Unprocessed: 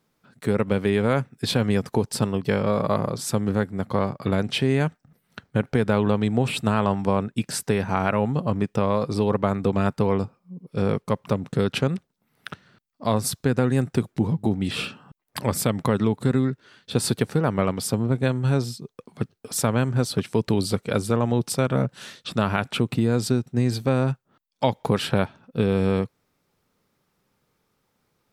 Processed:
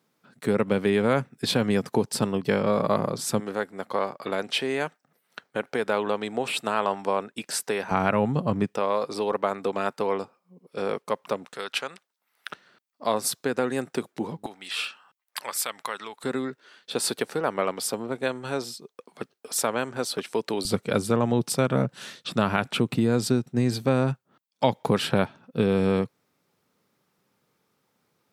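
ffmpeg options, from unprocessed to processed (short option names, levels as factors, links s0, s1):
-af "asetnsamples=n=441:p=0,asendcmd='3.4 highpass f 430;7.91 highpass f 120;8.75 highpass f 420;11.45 highpass f 890;12.5 highpass f 360;14.46 highpass f 1100;16.24 highpass f 400;20.65 highpass f 130',highpass=160"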